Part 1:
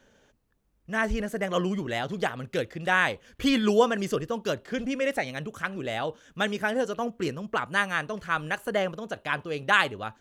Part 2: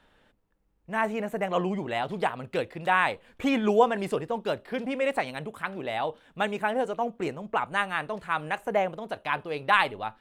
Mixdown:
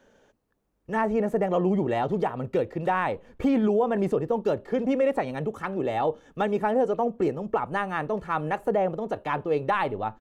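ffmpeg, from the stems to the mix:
-filter_complex "[0:a]highshelf=f=5000:g=11,asplit=2[s0][s1];[s1]highpass=f=720:p=1,volume=7.08,asoftclip=type=tanh:threshold=0.668[s2];[s0][s2]amix=inputs=2:normalize=0,lowpass=f=6900:p=1,volume=0.501,volume=0.282[s3];[1:a]agate=range=0.0224:threshold=0.00282:ratio=3:detection=peak,adelay=2.3,volume=0.944,asplit=2[s4][s5];[s5]apad=whole_len=449945[s6];[s3][s6]sidechaincompress=threshold=0.0282:ratio=8:attack=16:release=883[s7];[s7][s4]amix=inputs=2:normalize=0,tiltshelf=f=1300:g=9.5,alimiter=limit=0.178:level=0:latency=1:release=140"

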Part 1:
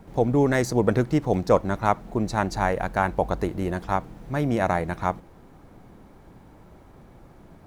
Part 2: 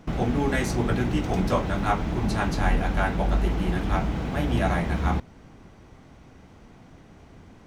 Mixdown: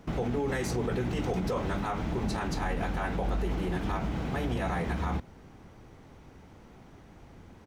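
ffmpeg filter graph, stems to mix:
-filter_complex "[0:a]aecho=1:1:2.3:0.65,volume=0.316[s0];[1:a]highpass=43,volume=0.668[s1];[s0][s1]amix=inputs=2:normalize=0,alimiter=limit=0.0794:level=0:latency=1:release=55"

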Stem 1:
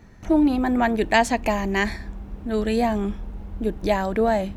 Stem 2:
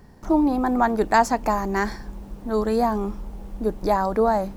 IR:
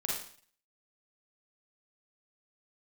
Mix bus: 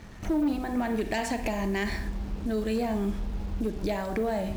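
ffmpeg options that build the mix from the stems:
-filter_complex "[0:a]bandreject=f=127:t=h:w=4,bandreject=f=254:t=h:w=4,bandreject=f=381:t=h:w=4,bandreject=f=508:t=h:w=4,bandreject=f=635:t=h:w=4,bandreject=f=762:t=h:w=4,bandreject=f=889:t=h:w=4,bandreject=f=1016:t=h:w=4,bandreject=f=1143:t=h:w=4,bandreject=f=1270:t=h:w=4,bandreject=f=1397:t=h:w=4,bandreject=f=1524:t=h:w=4,bandreject=f=1651:t=h:w=4,bandreject=f=1778:t=h:w=4,bandreject=f=1905:t=h:w=4,bandreject=f=2032:t=h:w=4,bandreject=f=2159:t=h:w=4,bandreject=f=2286:t=h:w=4,bandreject=f=2413:t=h:w=4,bandreject=f=2540:t=h:w=4,bandreject=f=2667:t=h:w=4,bandreject=f=2794:t=h:w=4,bandreject=f=2921:t=h:w=4,bandreject=f=3048:t=h:w=4,bandreject=f=3175:t=h:w=4,bandreject=f=3302:t=h:w=4,bandreject=f=3429:t=h:w=4,bandreject=f=3556:t=h:w=4,volume=1.26,asplit=2[s0][s1];[s1]volume=0.075[s2];[1:a]volume=0.112,asplit=2[s3][s4];[s4]apad=whole_len=201375[s5];[s0][s5]sidechaincompress=threshold=0.00316:ratio=6:attack=16:release=118[s6];[2:a]atrim=start_sample=2205[s7];[s2][s7]afir=irnorm=-1:irlink=0[s8];[s6][s3][s8]amix=inputs=3:normalize=0,volume=11.9,asoftclip=hard,volume=0.0841,acrusher=bits=7:mix=0:aa=0.5"

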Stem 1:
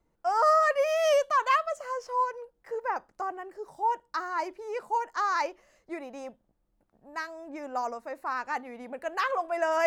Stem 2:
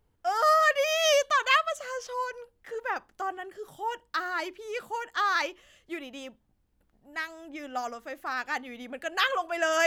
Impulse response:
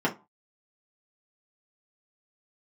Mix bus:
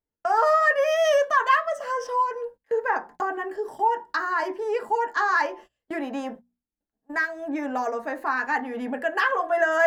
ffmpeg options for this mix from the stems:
-filter_complex "[0:a]agate=range=0.355:threshold=0.00355:ratio=16:detection=peak,equalizer=f=1700:t=o:w=0.27:g=10,acontrast=63,volume=1,asplit=3[s0][s1][s2];[s1]volume=0.316[s3];[1:a]volume=0.944[s4];[s2]apad=whole_len=435067[s5];[s4][s5]sidechaincompress=threshold=0.1:ratio=8:attack=16:release=390[s6];[2:a]atrim=start_sample=2205[s7];[s3][s7]afir=irnorm=-1:irlink=0[s8];[s0][s6][s8]amix=inputs=3:normalize=0,agate=range=0.0631:threshold=0.0141:ratio=16:detection=peak,bandreject=f=60:t=h:w=6,bandreject=f=120:t=h:w=6,bandreject=f=180:t=h:w=6,bandreject=f=240:t=h:w=6,acompressor=threshold=0.02:ratio=1.5"

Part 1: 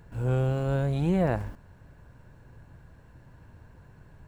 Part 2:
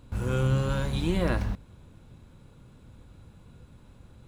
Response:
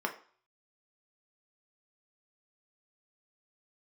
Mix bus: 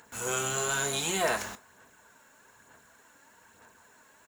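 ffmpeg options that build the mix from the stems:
-filter_complex "[0:a]aphaser=in_gain=1:out_gain=1:delay=3.7:decay=0.47:speed=1.1:type=sinusoidal,volume=0.841,asplit=3[s0][s1][s2];[s1]volume=0.562[s3];[1:a]adelay=0.4,volume=1.19,asplit=2[s4][s5];[s5]volume=0.335[s6];[s2]apad=whole_len=188459[s7];[s4][s7]sidechaingate=range=0.0224:threshold=0.00794:ratio=16:detection=peak[s8];[2:a]atrim=start_sample=2205[s9];[s3][s6]amix=inputs=2:normalize=0[s10];[s10][s9]afir=irnorm=-1:irlink=0[s11];[s0][s8][s11]amix=inputs=3:normalize=0,highpass=f=1400:p=1,equalizer=f=6900:w=4.6:g=14.5,crystalizer=i=1.5:c=0"

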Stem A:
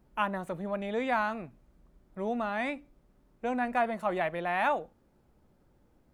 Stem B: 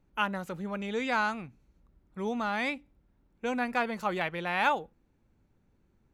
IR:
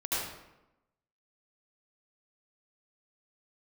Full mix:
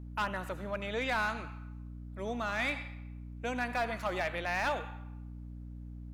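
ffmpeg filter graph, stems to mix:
-filter_complex "[0:a]highpass=f=210:p=1,volume=0.668[s0];[1:a]highpass=1100,alimiter=limit=0.0708:level=0:latency=1:release=117,volume=0.596,asplit=2[s1][s2];[s2]volume=0.251[s3];[2:a]atrim=start_sample=2205[s4];[s3][s4]afir=irnorm=-1:irlink=0[s5];[s0][s1][s5]amix=inputs=3:normalize=0,asoftclip=type=hard:threshold=0.0501,aeval=exprs='val(0)+0.00708*(sin(2*PI*60*n/s)+sin(2*PI*2*60*n/s)/2+sin(2*PI*3*60*n/s)/3+sin(2*PI*4*60*n/s)/4+sin(2*PI*5*60*n/s)/5)':c=same"

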